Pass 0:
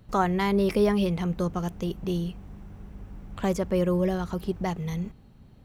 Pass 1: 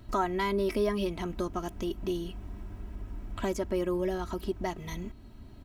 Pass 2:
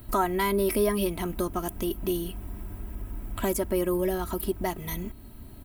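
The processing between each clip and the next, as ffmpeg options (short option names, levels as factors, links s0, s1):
-af "equalizer=f=560:w=5.5:g=-3,aecho=1:1:3.1:0.71,acompressor=threshold=0.00631:ratio=1.5,volume=1.41"
-af "aexciter=amount=4.6:drive=8.2:freq=8600,volume=1.5"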